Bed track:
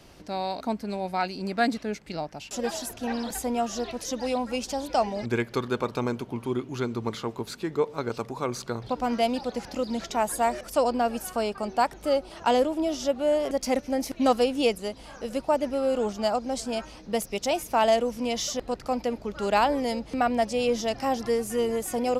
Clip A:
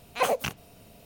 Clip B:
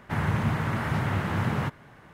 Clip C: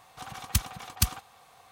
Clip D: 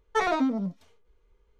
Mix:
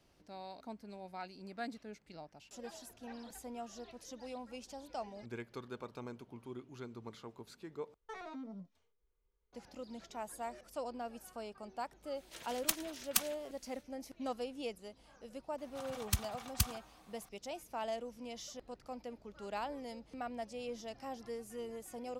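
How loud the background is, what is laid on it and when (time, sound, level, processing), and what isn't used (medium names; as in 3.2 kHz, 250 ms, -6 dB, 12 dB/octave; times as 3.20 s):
bed track -18 dB
7.94 s: replace with D -18 dB + peak limiter -21.5 dBFS
12.14 s: add C -3 dB, fades 0.05 s + spectral gate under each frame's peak -15 dB weak
15.58 s: add C -7.5 dB
not used: A, B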